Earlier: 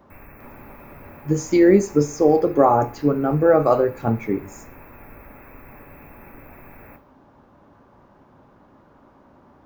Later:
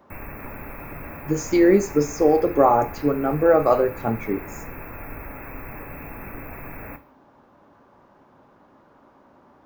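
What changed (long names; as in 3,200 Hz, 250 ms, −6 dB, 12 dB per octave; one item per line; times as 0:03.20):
speech: add low-shelf EQ 170 Hz −9.5 dB
background +8.0 dB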